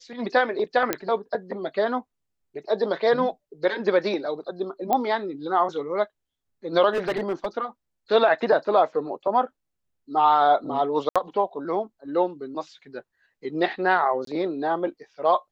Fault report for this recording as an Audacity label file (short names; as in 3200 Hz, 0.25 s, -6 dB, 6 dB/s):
0.930000	0.930000	pop -7 dBFS
4.930000	4.930000	pop -10 dBFS
6.930000	7.470000	clipped -21 dBFS
11.090000	11.160000	gap 66 ms
14.250000	14.270000	gap 23 ms